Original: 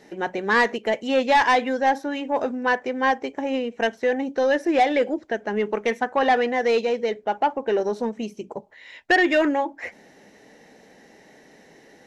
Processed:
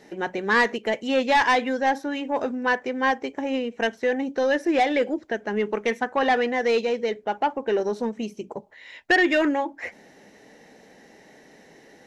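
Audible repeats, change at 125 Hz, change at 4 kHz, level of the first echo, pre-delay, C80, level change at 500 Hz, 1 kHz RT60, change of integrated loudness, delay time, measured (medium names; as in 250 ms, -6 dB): no echo, no reading, 0.0 dB, no echo, no reverb, no reverb, -1.5 dB, no reverb, -1.5 dB, no echo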